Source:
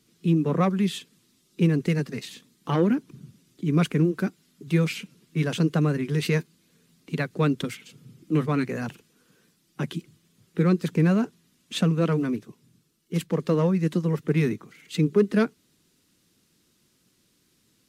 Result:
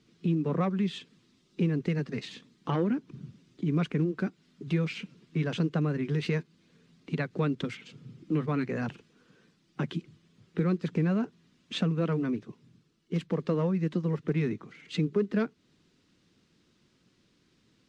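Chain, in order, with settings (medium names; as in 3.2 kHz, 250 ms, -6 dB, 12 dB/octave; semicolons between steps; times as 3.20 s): block-companded coder 7-bit; compression 2:1, threshold -31 dBFS, peak gain reduction 9.5 dB; distance through air 130 m; trim +1.5 dB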